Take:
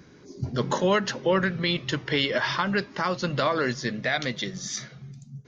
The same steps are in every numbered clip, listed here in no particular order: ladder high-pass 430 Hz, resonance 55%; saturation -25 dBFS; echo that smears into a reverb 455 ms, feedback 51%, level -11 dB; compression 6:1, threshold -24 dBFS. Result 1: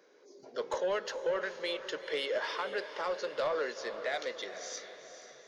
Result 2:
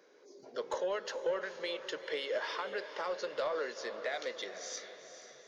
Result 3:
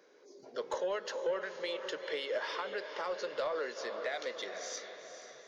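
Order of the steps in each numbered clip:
ladder high-pass > compression > saturation > echo that smears into a reverb; compression > ladder high-pass > saturation > echo that smears into a reverb; echo that smears into a reverb > compression > ladder high-pass > saturation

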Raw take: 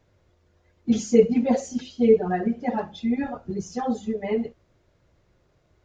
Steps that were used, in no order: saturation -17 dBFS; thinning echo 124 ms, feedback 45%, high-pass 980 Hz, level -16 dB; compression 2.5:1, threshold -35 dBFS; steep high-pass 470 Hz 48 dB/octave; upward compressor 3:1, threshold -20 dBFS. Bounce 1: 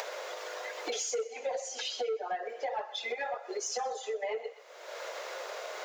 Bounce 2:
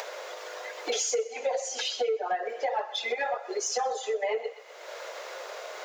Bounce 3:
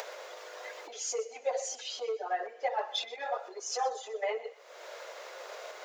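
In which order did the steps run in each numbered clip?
steep high-pass > upward compressor > thinning echo > saturation > compression; steep high-pass > compression > thinning echo > upward compressor > saturation; compression > upward compressor > thinning echo > saturation > steep high-pass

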